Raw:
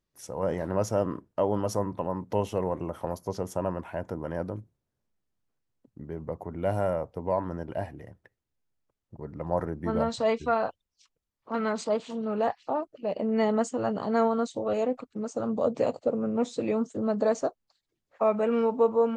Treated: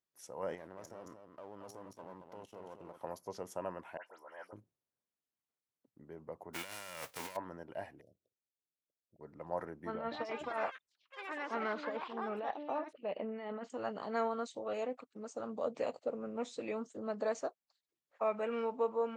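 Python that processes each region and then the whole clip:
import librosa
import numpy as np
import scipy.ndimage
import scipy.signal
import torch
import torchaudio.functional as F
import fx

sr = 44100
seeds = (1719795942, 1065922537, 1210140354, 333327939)

y = fx.chain(x, sr, fx.halfwave_gain(db=-7.0),
    fx.level_steps(step_db=19),
    fx.echo_single(ms=223, db=-7.0), at=(0.55, 3.01))
y = fx.chain(y, sr, fx.highpass(hz=870.0, slope=12),
    fx.dispersion(late='highs', ms=101.0, hz=2600.0), at=(3.97, 4.53))
y = fx.envelope_flatten(y, sr, power=0.3, at=(6.53, 7.35), fade=0.02)
y = fx.over_compress(y, sr, threshold_db=-36.0, ratio=-1.0, at=(6.53, 7.35), fade=0.02)
y = fx.chain(y, sr, fx.cheby1_bandstop(low_hz=650.0, high_hz=3600.0, order=4),
    fx.level_steps(step_db=10),
    fx.resample_linear(factor=2), at=(8.01, 9.21))
y = fx.chain(y, sr, fx.lowpass(hz=3500.0, slope=24),
    fx.over_compress(threshold_db=-27.0, ratio=-0.5),
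    fx.echo_pitch(ms=174, semitones=5, count=3, db_per_echo=-6.0), at=(9.94, 13.7))
y = fx.highpass(y, sr, hz=420.0, slope=6)
y = fx.dynamic_eq(y, sr, hz=2200.0, q=1.1, threshold_db=-48.0, ratio=4.0, max_db=5)
y = F.gain(torch.from_numpy(y), -8.5).numpy()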